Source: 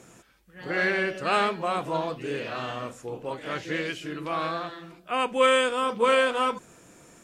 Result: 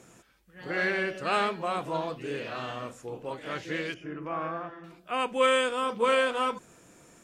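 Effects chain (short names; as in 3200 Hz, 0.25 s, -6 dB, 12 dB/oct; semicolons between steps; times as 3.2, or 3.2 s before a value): 3.94–4.84 running mean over 11 samples; gain -3 dB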